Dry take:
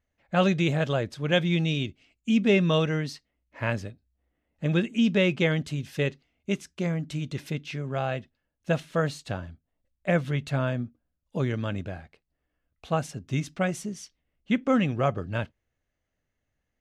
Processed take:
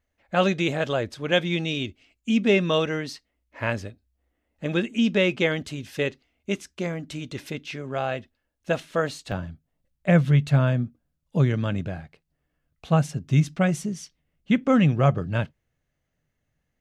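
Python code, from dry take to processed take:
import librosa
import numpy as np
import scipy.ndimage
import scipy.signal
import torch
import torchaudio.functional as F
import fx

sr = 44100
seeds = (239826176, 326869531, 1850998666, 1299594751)

y = fx.peak_eq(x, sr, hz=150.0, db=fx.steps((0.0, -8.5), (9.32, 8.5)), octaves=0.59)
y = F.gain(torch.from_numpy(y), 2.5).numpy()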